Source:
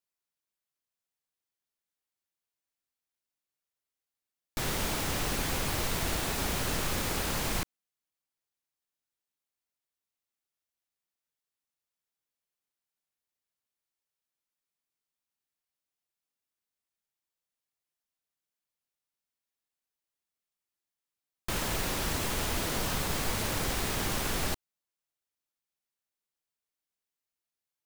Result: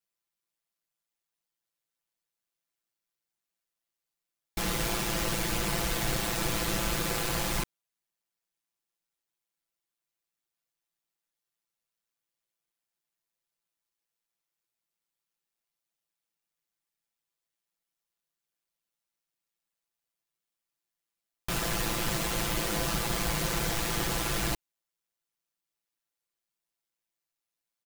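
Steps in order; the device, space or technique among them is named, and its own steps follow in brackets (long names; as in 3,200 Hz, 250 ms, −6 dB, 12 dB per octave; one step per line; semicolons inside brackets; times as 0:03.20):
ring-modulated robot voice (ring modulation 56 Hz; comb filter 5.9 ms, depth 86%)
level +2 dB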